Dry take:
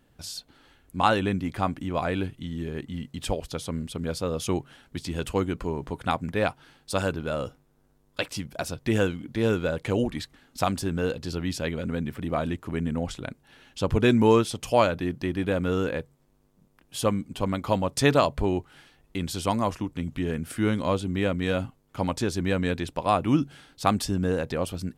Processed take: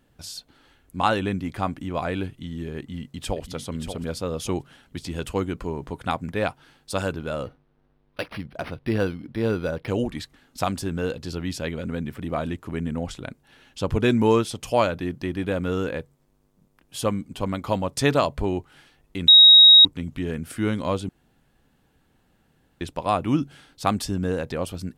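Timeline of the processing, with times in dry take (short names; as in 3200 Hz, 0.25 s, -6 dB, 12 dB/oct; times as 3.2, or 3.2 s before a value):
2.78–3.5 echo throw 0.58 s, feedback 25%, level -7.5 dB
7.43–9.88 decimation joined by straight lines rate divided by 6×
19.28–19.85 bleep 3790 Hz -7 dBFS
21.09–22.81 room tone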